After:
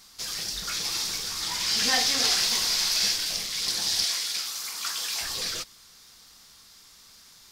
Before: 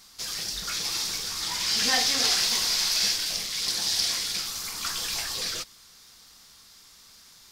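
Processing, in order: 4.04–5.21 s: high-pass 690 Hz 6 dB/octave

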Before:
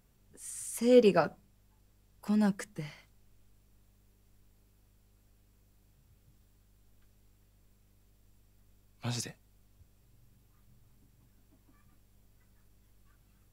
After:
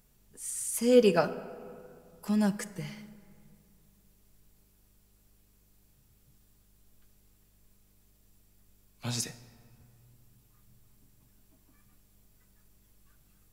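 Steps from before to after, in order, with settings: treble shelf 4.9 kHz +7.5 dB; on a send: reverberation RT60 2.4 s, pre-delay 5 ms, DRR 9 dB

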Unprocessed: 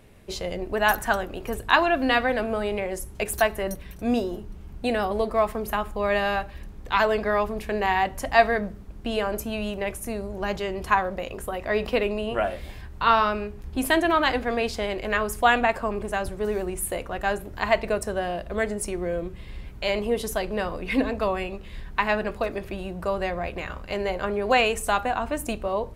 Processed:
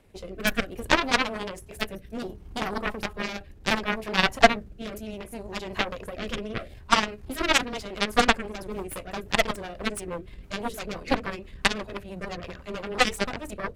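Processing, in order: granular stretch 0.53×, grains 105 ms; Chebyshev shaper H 3 -21 dB, 6 -20 dB, 7 -16 dB, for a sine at -5.5 dBFS; rotary cabinet horn 0.65 Hz, later 6 Hz, at 7.00 s; trim +6.5 dB

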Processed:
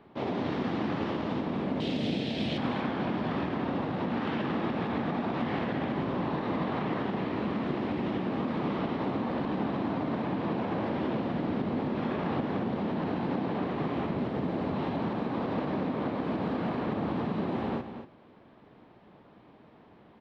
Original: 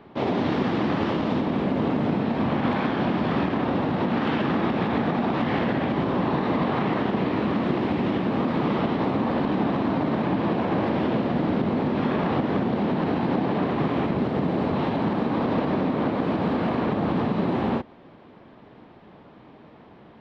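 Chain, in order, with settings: 1.80–2.58 s: FFT filter 640 Hz 0 dB, 1.1 kHz -13 dB, 3.3 kHz +15 dB; delay 236 ms -10 dB; trim -7.5 dB

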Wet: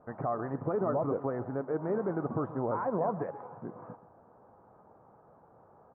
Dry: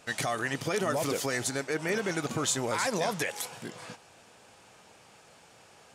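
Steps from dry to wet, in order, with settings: steep low-pass 1.2 kHz 36 dB/octave; on a send: delay 130 ms -16 dB

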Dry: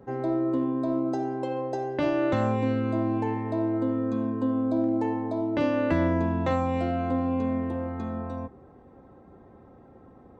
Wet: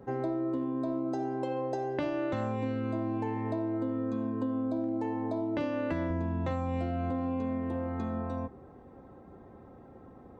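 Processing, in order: 6.10–7.11 s: bass shelf 150 Hz +8 dB; compression, threshold -29 dBFS, peak gain reduction 10 dB

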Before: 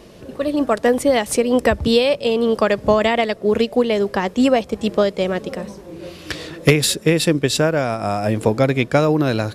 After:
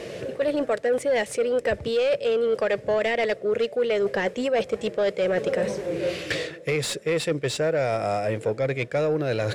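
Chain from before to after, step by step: graphic EQ 125/250/500/1000/2000/8000 Hz +11/-4/+10/-9/+7/+8 dB; reverse; compression 12:1, threshold -22 dBFS, peak gain reduction 22 dB; reverse; overdrive pedal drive 17 dB, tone 2.1 kHz, clips at -10 dBFS; trim -2.5 dB

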